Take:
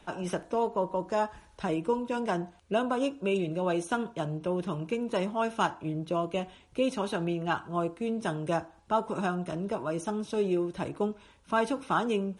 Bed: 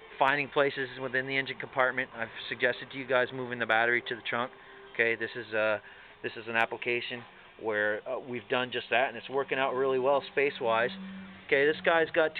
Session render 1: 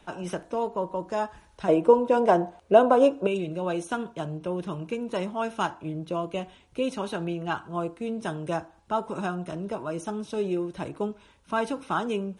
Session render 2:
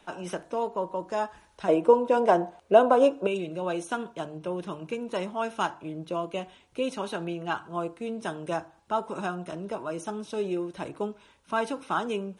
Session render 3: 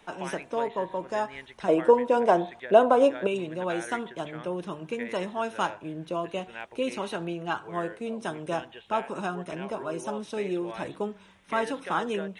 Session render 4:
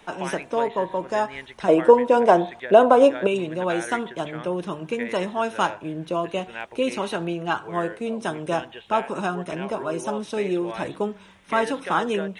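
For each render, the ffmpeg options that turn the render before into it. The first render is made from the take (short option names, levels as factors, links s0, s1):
-filter_complex "[0:a]asettb=1/sr,asplit=3[s0][s1][s2];[s0]atrim=end=1.684[s3];[s1]atrim=start=1.68:end=3.27,asetpts=PTS-STARTPTS,afade=t=in:d=0.004:c=qsin,afade=t=out:st=1.586:d=0.004:c=qsin,equalizer=f=590:t=o:w=2:g=13[s4];[s2]atrim=start=3.266[s5];[s3][s4]acrossfade=d=0.004:c1=hsin:c2=qsin[s6];[s6][s5]acrossfade=d=0.004:c1=qsin:c2=hsin"
-af "lowshelf=f=200:g=-7.5,bandreject=f=50:t=h:w=6,bandreject=f=100:t=h:w=6,bandreject=f=150:t=h:w=6"
-filter_complex "[1:a]volume=0.224[s0];[0:a][s0]amix=inputs=2:normalize=0"
-af "volume=1.88,alimiter=limit=0.794:level=0:latency=1"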